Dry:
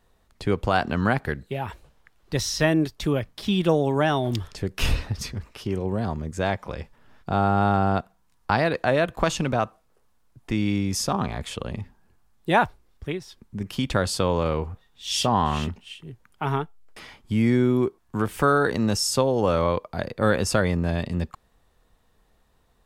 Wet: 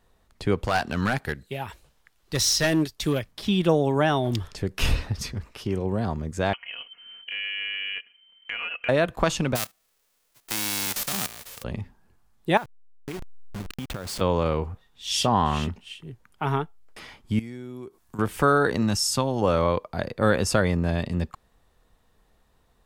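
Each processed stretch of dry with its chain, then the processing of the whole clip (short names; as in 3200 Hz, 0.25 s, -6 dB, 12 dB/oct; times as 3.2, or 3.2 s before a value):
0.64–3.32 high shelf 2400 Hz +9.5 dB + overloaded stage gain 16 dB + upward expander, over -31 dBFS
6.53–8.89 inverted band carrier 3100 Hz + comb 4.2 ms, depth 54% + compressor 2:1, threshold -37 dBFS
9.55–11.62 spectral whitening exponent 0.1 + level quantiser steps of 14 dB
12.57–14.21 level-crossing sampler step -28 dBFS + compressor 20:1, threshold -28 dBFS
17.39–18.19 compressor, threshold -36 dBFS + high shelf 4600 Hz +11 dB
18.82–19.42 bell 460 Hz -12 dB 0.47 oct + mismatched tape noise reduction encoder only
whole clip: dry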